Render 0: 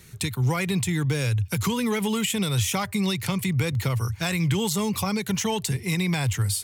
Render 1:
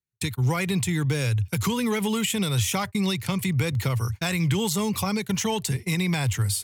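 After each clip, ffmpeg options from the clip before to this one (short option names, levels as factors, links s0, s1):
-af "agate=range=0.00562:threshold=0.0316:ratio=16:detection=peak"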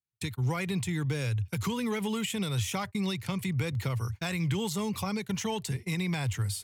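-af "highshelf=f=6500:g=-5.5,volume=0.501"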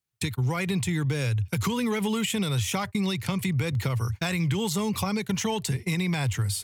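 -af "acompressor=threshold=0.0251:ratio=2.5,volume=2.37"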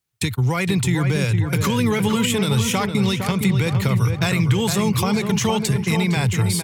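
-filter_complex "[0:a]asplit=2[s0][s1];[s1]adelay=460,lowpass=f=2100:p=1,volume=0.531,asplit=2[s2][s3];[s3]adelay=460,lowpass=f=2100:p=1,volume=0.49,asplit=2[s4][s5];[s5]adelay=460,lowpass=f=2100:p=1,volume=0.49,asplit=2[s6][s7];[s7]adelay=460,lowpass=f=2100:p=1,volume=0.49,asplit=2[s8][s9];[s9]adelay=460,lowpass=f=2100:p=1,volume=0.49,asplit=2[s10][s11];[s11]adelay=460,lowpass=f=2100:p=1,volume=0.49[s12];[s0][s2][s4][s6][s8][s10][s12]amix=inputs=7:normalize=0,volume=2.11"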